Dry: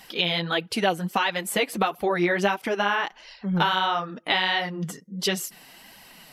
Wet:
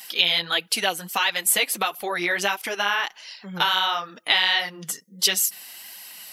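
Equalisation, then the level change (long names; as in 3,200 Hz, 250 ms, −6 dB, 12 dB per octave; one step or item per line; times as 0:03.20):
spectral tilt +4 dB per octave
−1.0 dB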